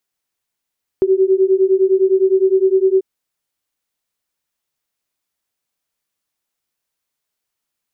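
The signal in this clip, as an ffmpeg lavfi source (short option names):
-f lavfi -i "aevalsrc='0.211*(sin(2*PI*376*t)+sin(2*PI*385.8*t))':d=1.99:s=44100"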